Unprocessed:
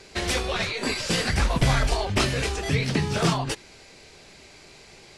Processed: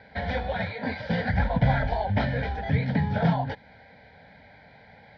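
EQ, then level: dynamic EQ 1700 Hz, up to -4 dB, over -42 dBFS, Q 0.95; speaker cabinet 100–2300 Hz, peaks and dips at 140 Hz -6 dB, 380 Hz -6 dB, 640 Hz -5 dB, 1100 Hz -9 dB, 2000 Hz -6 dB; fixed phaser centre 1800 Hz, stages 8; +7.5 dB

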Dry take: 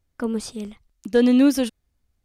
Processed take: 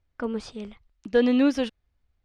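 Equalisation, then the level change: LPF 3600 Hz 12 dB/oct; bell 220 Hz -5.5 dB 1.9 oct; 0.0 dB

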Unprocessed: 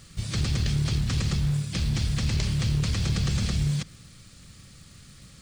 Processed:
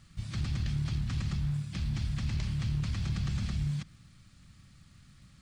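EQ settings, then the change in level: bell 460 Hz -12.5 dB 0.68 oct; high shelf 3500 Hz -10.5 dB; -6.0 dB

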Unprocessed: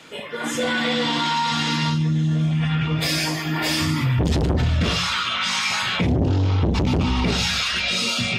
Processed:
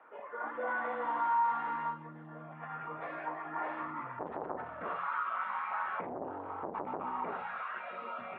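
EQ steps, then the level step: HPF 910 Hz 12 dB/oct; inverse Chebyshev low-pass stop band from 5300 Hz, stop band 70 dB; -2.0 dB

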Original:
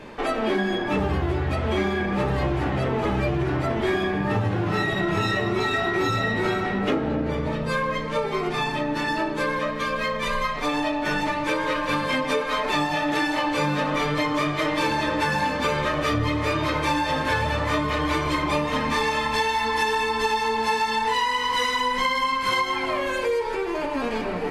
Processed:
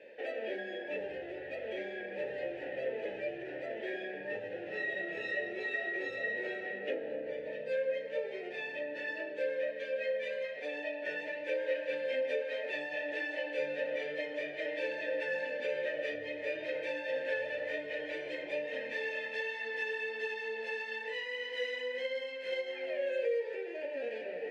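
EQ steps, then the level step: vowel filter e; low shelf 220 Hz -9.5 dB; bell 1200 Hz -15 dB 0.3 oct; 0.0 dB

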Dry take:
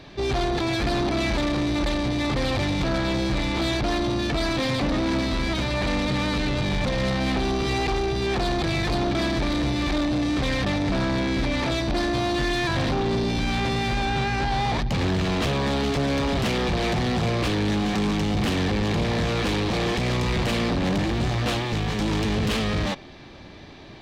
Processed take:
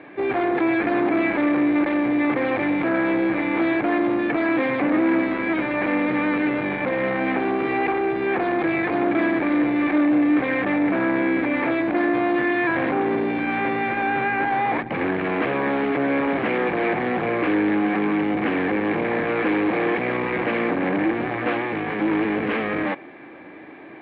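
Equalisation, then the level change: air absorption 140 m; speaker cabinet 240–2600 Hz, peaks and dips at 310 Hz +10 dB, 490 Hz +5 dB, 770 Hz +4 dB, 1100 Hz +3 dB, 1600 Hz +7 dB, 2200 Hz +8 dB; 0.0 dB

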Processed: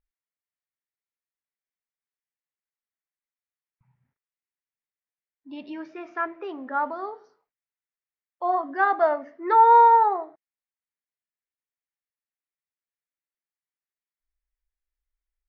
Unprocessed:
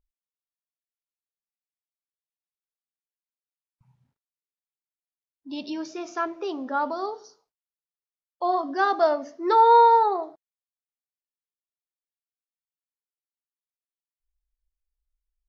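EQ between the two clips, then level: dynamic EQ 810 Hz, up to +5 dB, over -27 dBFS, Q 1.7; synth low-pass 2000 Hz, resonance Q 2.9; -4.5 dB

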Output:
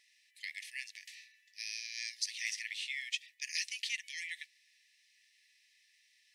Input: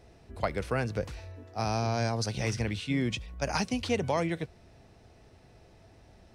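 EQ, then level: brick-wall FIR high-pass 1700 Hz; 0.0 dB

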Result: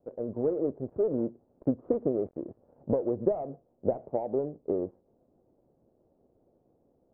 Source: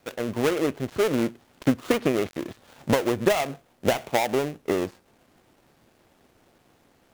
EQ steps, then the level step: ladder low-pass 680 Hz, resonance 35%; 0.0 dB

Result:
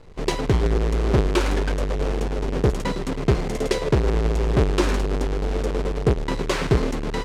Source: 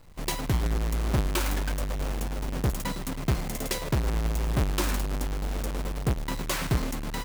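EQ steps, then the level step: air absorption 76 m; bell 420 Hz +11 dB 0.53 oct; +5.5 dB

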